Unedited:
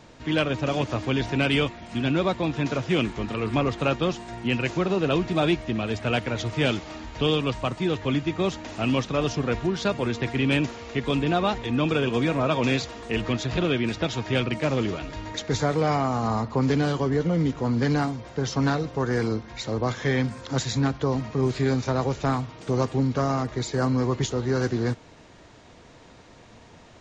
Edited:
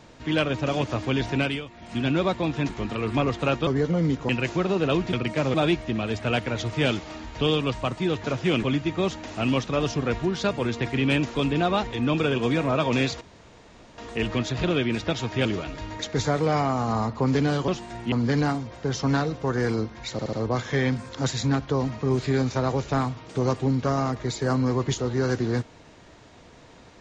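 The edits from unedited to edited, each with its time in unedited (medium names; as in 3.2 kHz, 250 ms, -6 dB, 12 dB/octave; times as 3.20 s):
1.38–1.90 s: dip -14 dB, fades 0.24 s
2.69–3.08 s: move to 8.04 s
4.06–4.50 s: swap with 17.03–17.65 s
10.76–11.06 s: delete
12.92 s: insert room tone 0.77 s
14.39–14.80 s: move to 5.34 s
19.65 s: stutter 0.07 s, 4 plays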